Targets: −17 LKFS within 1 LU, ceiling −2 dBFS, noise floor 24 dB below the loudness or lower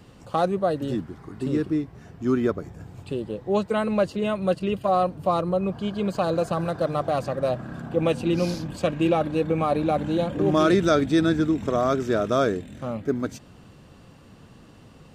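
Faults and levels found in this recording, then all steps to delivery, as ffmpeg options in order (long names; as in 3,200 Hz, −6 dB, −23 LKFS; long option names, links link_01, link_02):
integrated loudness −24.5 LKFS; sample peak −7.5 dBFS; target loudness −17.0 LKFS
→ -af "volume=7.5dB,alimiter=limit=-2dB:level=0:latency=1"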